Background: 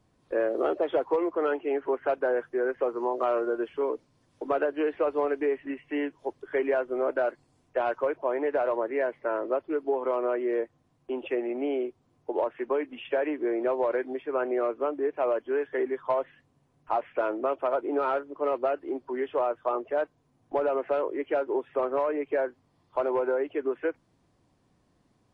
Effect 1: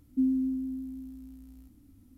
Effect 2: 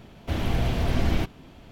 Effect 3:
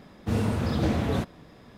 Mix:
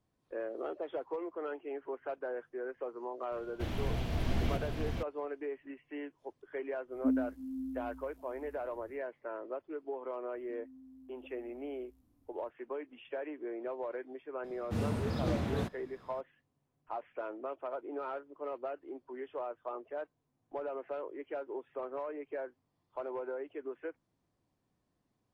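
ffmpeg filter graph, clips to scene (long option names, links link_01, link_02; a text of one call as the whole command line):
ffmpeg -i bed.wav -i cue0.wav -i cue1.wav -i cue2.wav -filter_complex "[1:a]asplit=2[link_01][link_02];[0:a]volume=-12.5dB[link_03];[2:a]aecho=1:1:522|663:0.473|0.473[link_04];[link_01]asplit=2[link_05][link_06];[link_06]adelay=5.2,afreqshift=1.3[link_07];[link_05][link_07]amix=inputs=2:normalize=1[link_08];[link_02]acompressor=threshold=-39dB:ratio=6:attack=3.2:release=140:knee=1:detection=peak[link_09];[link_04]atrim=end=1.71,asetpts=PTS-STARTPTS,volume=-10dB,afade=type=in:duration=0.004:curve=hsin,afade=type=out:start_time=1.706:duration=0.004:curve=hsin,adelay=3320[link_10];[link_08]atrim=end=2.17,asetpts=PTS-STARTPTS,volume=-2dB,afade=type=in:duration=0.1,afade=type=out:start_time=2.07:duration=0.1,adelay=6870[link_11];[link_09]atrim=end=2.17,asetpts=PTS-STARTPTS,volume=-14.5dB,afade=type=in:duration=0.004:curve=hsin,afade=type=out:start_time=2.166:duration=0.004:curve=hsin,adelay=10330[link_12];[3:a]atrim=end=1.77,asetpts=PTS-STARTPTS,volume=-8dB,afade=type=in:duration=0.004:curve=hsin,afade=type=out:start_time=1.766:duration=0.004:curve=hsin,adelay=636804S[link_13];[link_03][link_10][link_11][link_12][link_13]amix=inputs=5:normalize=0" out.wav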